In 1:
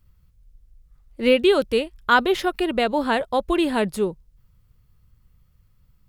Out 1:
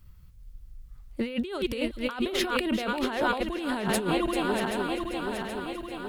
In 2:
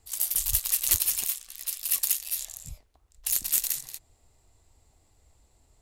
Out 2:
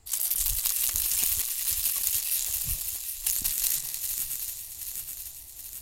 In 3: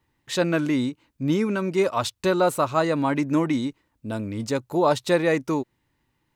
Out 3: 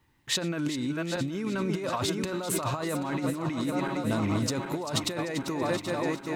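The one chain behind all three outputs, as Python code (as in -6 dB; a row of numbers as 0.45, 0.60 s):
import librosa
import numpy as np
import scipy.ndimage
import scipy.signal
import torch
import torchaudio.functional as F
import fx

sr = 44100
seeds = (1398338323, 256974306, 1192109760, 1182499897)

y = fx.reverse_delay_fb(x, sr, ms=388, feedback_pct=76, wet_db=-12.0)
y = fx.peak_eq(y, sr, hz=500.0, db=-3.0, octaves=0.98)
y = fx.over_compress(y, sr, threshold_db=-29.0, ratio=-1.0)
y = fx.echo_wet_highpass(y, sr, ms=392, feedback_pct=49, hz=2300.0, wet_db=-10.5)
y = y * 10.0 ** (-30 / 20.0) / np.sqrt(np.mean(np.square(y)))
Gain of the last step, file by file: 0.0, +2.5, -0.5 dB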